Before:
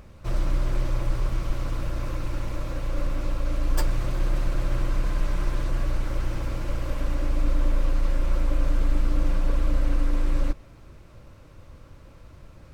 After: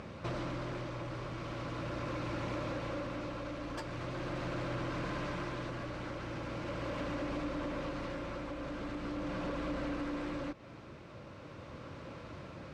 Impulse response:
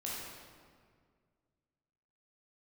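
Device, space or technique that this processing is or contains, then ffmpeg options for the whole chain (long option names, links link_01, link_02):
AM radio: -af "highpass=150,lowpass=4500,acompressor=threshold=-40dB:ratio=6,asoftclip=type=tanh:threshold=-36.5dB,tremolo=f=0.41:d=0.37,volume=7.5dB"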